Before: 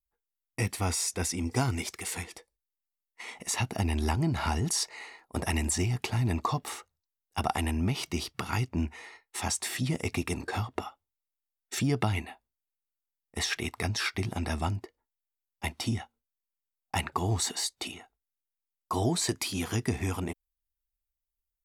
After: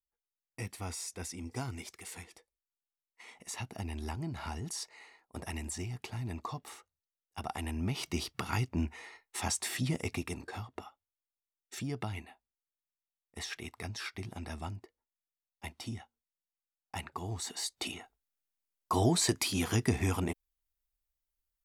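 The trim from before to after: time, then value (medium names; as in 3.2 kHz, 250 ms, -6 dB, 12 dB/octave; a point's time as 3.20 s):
7.42 s -10.5 dB
8.11 s -2.5 dB
9.91 s -2.5 dB
10.59 s -10 dB
17.40 s -10 dB
17.91 s +0.5 dB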